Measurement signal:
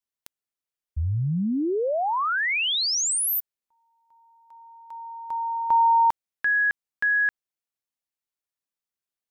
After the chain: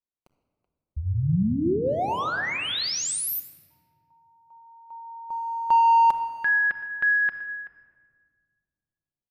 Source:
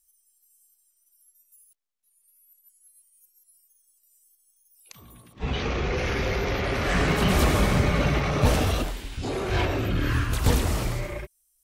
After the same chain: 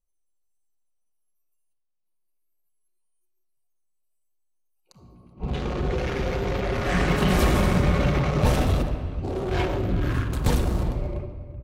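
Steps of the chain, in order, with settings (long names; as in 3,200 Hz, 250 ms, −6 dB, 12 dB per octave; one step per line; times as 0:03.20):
adaptive Wiener filter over 25 samples
far-end echo of a speakerphone 380 ms, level −17 dB
rectangular room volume 2,800 cubic metres, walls mixed, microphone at 0.97 metres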